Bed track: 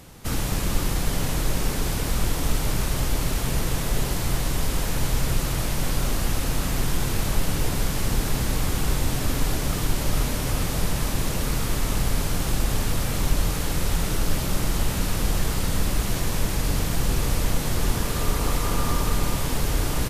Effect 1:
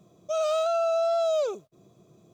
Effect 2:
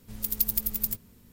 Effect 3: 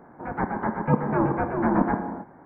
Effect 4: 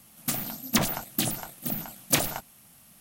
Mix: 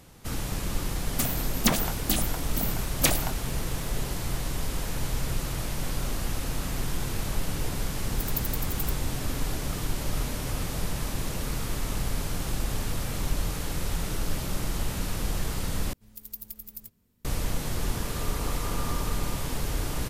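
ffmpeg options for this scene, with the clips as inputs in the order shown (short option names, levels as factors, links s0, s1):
-filter_complex "[2:a]asplit=2[s0][s1];[0:a]volume=0.501[s2];[s0]dynaudnorm=f=140:g=3:m=3.76[s3];[s2]asplit=2[s4][s5];[s4]atrim=end=15.934[s6];[s1]atrim=end=1.32,asetpts=PTS-STARTPTS,volume=0.211[s7];[s5]atrim=start=17.246[s8];[4:a]atrim=end=3,asetpts=PTS-STARTPTS,afade=t=in:d=0.004:c=hsin,afade=t=out:st=2.996:d=0.004:c=hsin,adelay=910[s9];[s3]atrim=end=1.32,asetpts=PTS-STARTPTS,volume=0.282,afade=t=in:d=0.004:c=hsin,afade=t=out:st=1.316:d=0.004:c=hsin,adelay=7960[s10];[s6][s7]acrossfade=d=0.004:c1=hsin:c2=hsin[s11];[s11][s8]acrossfade=d=0.004:c1=hsin:c2=hsin[s12];[s12][s9][s10]amix=inputs=3:normalize=0"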